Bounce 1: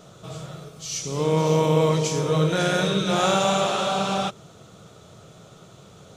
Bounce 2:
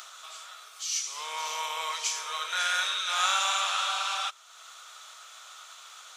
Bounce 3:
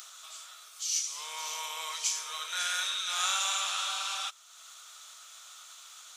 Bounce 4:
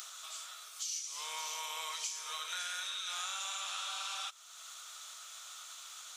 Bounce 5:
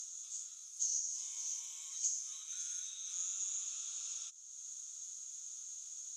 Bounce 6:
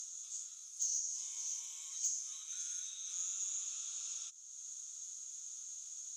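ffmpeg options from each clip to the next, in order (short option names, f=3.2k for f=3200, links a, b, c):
-af "acompressor=mode=upward:threshold=-31dB:ratio=2.5,highpass=f=1.1k:w=0.5412,highpass=f=1.1k:w=1.3066"
-af "highshelf=f=3.7k:g=11.5,volume=-8dB"
-af "acompressor=threshold=-38dB:ratio=6,volume=1dB"
-af "bandpass=f=6.6k:t=q:w=13:csg=0,volume=10.5dB"
-af "asoftclip=type=tanh:threshold=-23dB"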